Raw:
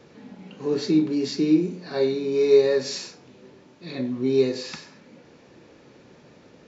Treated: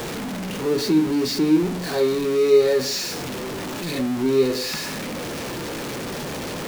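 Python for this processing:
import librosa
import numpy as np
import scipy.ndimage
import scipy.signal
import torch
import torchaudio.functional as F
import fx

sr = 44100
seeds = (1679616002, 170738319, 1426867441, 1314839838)

y = x + 0.5 * 10.0 ** (-24.5 / 20.0) * np.sign(x)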